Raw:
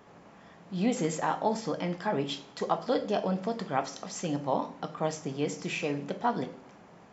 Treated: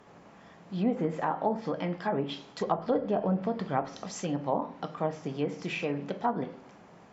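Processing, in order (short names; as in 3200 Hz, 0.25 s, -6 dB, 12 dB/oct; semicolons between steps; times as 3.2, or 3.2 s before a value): treble ducked by the level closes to 1200 Hz, closed at -24 dBFS; 2.61–4.12 low shelf 130 Hz +8.5 dB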